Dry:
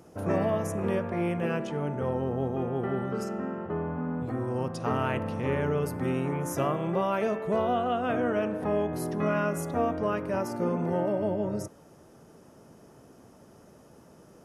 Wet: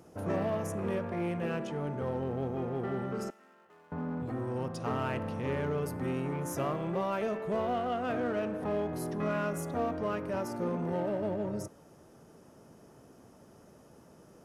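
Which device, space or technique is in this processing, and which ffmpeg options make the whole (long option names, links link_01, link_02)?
parallel distortion: -filter_complex "[0:a]asplit=2[link_01][link_02];[link_02]asoftclip=type=hard:threshold=-33dB,volume=-5dB[link_03];[link_01][link_03]amix=inputs=2:normalize=0,asettb=1/sr,asplit=3[link_04][link_05][link_06];[link_04]atrim=end=3.304[link_07];[link_05]atrim=start=3.3:end=3.92,asetpts=PTS-STARTPTS,afade=type=in:duration=0.004:curve=qsin,afade=type=out:start_time=0.616:duration=0.004:curve=qsin,aderivative[link_08];[link_06]atrim=start=3.916[link_09];[link_07][link_08]acrossfade=duration=0.004:curve1=hsin:curve2=qsin[link_10];[link_10][link_09]acrossfade=duration=0.004:curve1=qsin:curve2=hsin,volume=-6.5dB"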